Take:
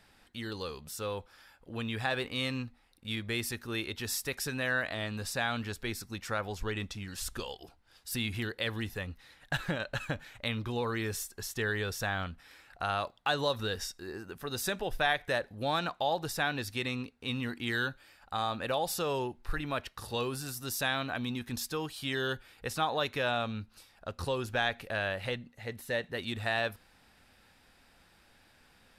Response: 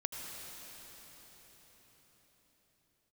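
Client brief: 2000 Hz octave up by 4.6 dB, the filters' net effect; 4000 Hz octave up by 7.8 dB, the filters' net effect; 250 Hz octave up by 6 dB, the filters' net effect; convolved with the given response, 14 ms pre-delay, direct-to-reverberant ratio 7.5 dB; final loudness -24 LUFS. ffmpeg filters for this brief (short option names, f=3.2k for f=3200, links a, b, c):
-filter_complex "[0:a]equalizer=f=250:t=o:g=7,equalizer=f=2k:t=o:g=4,equalizer=f=4k:t=o:g=8,asplit=2[a][b];[1:a]atrim=start_sample=2205,adelay=14[c];[b][c]afir=irnorm=-1:irlink=0,volume=-9dB[d];[a][d]amix=inputs=2:normalize=0,volume=5dB"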